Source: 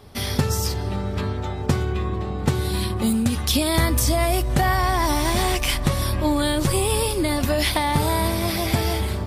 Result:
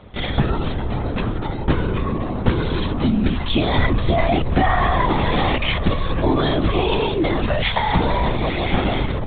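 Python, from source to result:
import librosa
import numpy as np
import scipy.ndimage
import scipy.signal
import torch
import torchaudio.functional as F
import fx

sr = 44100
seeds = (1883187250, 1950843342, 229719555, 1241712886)

y = fx.lpc_vocoder(x, sr, seeds[0], excitation='whisper', order=16)
y = fx.peak_eq(y, sr, hz=320.0, db=-13.5, octaves=0.65, at=(7.46, 7.94))
y = F.gain(torch.from_numpy(y), 3.0).numpy()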